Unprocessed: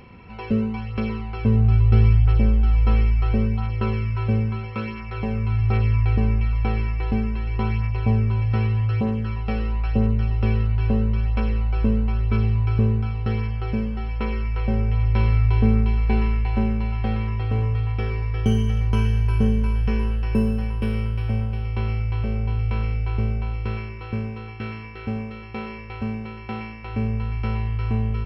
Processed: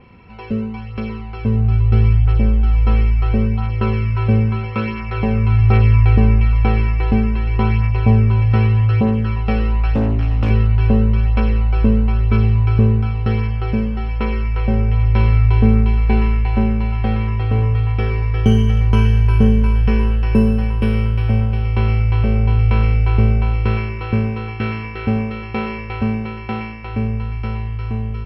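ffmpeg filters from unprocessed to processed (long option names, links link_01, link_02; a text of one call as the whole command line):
ffmpeg -i in.wav -filter_complex "[0:a]asettb=1/sr,asplit=3[link_01][link_02][link_03];[link_01]atrim=end=9.944[link_04];[link_02]atrim=start=9.94:end=10.5,asetpts=PTS-STARTPTS,afade=type=in:duration=0.004:curve=qsin,afade=type=out:start_time=0.556:duration=0.004:curve=qsin,asoftclip=type=hard:threshold=-19dB[link_05];[link_03]atrim=start=10.496[link_06];[link_04][link_05]acrossfade=duration=0.004:curve1=hsin:curve2=qsin[link_07];[link_07][link_06]acrossfade=duration=0.004:curve1=qsin:curve2=hsin,dynaudnorm=framelen=220:gausssize=17:maxgain=11.5dB,adynamicequalizer=threshold=0.00562:dfrequency=4700:dqfactor=0.7:tfrequency=4700:tqfactor=0.7:attack=5:release=100:ratio=0.375:range=3:mode=cutabove:tftype=highshelf" out.wav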